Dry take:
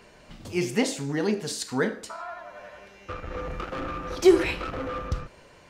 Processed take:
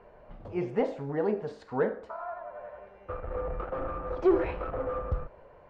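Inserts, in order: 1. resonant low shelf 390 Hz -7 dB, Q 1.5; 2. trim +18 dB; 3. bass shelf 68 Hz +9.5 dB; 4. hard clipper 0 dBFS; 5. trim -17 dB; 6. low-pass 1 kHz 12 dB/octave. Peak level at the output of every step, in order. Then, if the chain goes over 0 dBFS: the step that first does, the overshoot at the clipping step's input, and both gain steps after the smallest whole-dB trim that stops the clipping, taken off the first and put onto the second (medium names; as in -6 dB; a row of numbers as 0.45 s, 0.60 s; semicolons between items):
-10.5 dBFS, +7.5 dBFS, +8.5 dBFS, 0.0 dBFS, -17.0 dBFS, -16.5 dBFS; step 2, 8.5 dB; step 2 +9 dB, step 5 -8 dB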